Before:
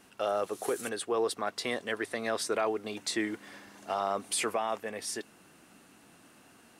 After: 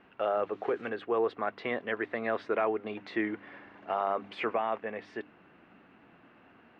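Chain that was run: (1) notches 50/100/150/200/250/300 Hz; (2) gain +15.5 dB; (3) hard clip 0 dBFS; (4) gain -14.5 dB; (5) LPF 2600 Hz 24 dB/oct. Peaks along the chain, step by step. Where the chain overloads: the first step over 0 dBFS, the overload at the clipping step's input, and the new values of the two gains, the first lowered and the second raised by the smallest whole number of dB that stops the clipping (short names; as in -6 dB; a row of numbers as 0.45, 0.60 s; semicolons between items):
-19.5, -4.0, -4.0, -18.5, -18.0 dBFS; no overload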